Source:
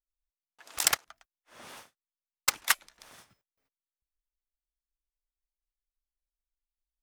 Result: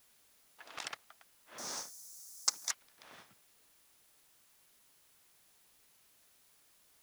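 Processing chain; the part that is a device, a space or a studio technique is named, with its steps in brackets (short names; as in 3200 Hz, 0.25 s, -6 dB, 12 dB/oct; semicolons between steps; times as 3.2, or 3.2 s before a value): medium wave at night (BPF 140–4100 Hz; compressor 5:1, threshold -40 dBFS, peak gain reduction 17.5 dB; tremolo 0.52 Hz, depth 46%; whine 10000 Hz -80 dBFS; white noise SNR 14 dB); 1.58–2.71 resonant high shelf 4200 Hz +13.5 dB, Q 3; gain +4 dB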